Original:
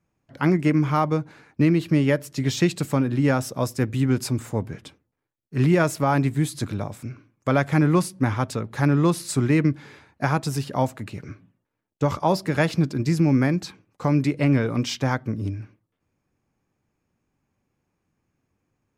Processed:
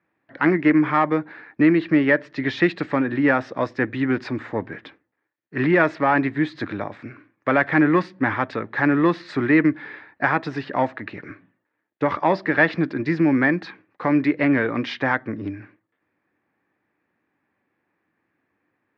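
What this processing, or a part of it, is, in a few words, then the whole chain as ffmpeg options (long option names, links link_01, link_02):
overdrive pedal into a guitar cabinet: -filter_complex "[0:a]asplit=2[link_01][link_02];[link_02]highpass=frequency=720:poles=1,volume=11dB,asoftclip=type=tanh:threshold=-8dB[link_03];[link_01][link_03]amix=inputs=2:normalize=0,lowpass=frequency=2700:poles=1,volume=-6dB,highpass=110,equalizer=frequency=140:width_type=q:width=4:gain=-4,equalizer=frequency=310:width_type=q:width=4:gain=6,equalizer=frequency=1800:width_type=q:width=4:gain=10,equalizer=frequency=3000:width_type=q:width=4:gain=-4,lowpass=frequency=3800:width=0.5412,lowpass=frequency=3800:width=1.3066"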